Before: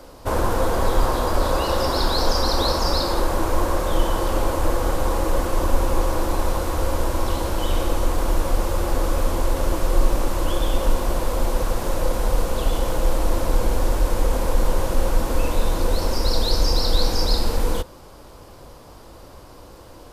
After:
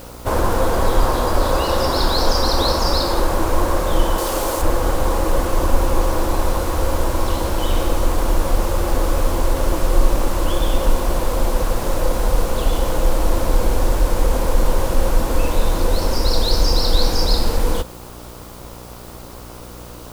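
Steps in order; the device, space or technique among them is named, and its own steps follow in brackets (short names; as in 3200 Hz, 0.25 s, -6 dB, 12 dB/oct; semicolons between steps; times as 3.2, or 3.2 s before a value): video cassette with head-switching buzz (buzz 60 Hz, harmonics 24, -42 dBFS -4 dB/oct; white noise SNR 29 dB); 4.18–4.62 tone controls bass -8 dB, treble +7 dB; gain +3 dB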